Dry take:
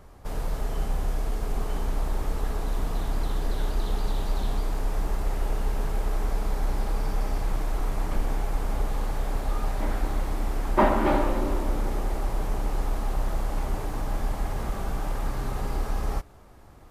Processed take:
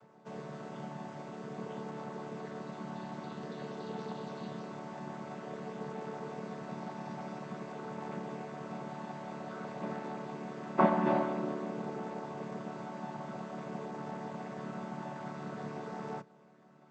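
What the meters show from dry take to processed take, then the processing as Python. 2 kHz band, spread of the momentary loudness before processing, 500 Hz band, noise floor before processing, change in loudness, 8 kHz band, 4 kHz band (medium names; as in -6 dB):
-7.5 dB, 5 LU, -5.5 dB, -48 dBFS, -9.0 dB, -17.0 dB, -12.0 dB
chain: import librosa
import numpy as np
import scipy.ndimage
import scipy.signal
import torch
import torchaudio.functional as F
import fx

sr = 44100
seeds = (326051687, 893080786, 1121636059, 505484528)

y = fx.chord_vocoder(x, sr, chord='major triad', root=50)
y = fx.low_shelf(y, sr, hz=340.0, db=-9.0)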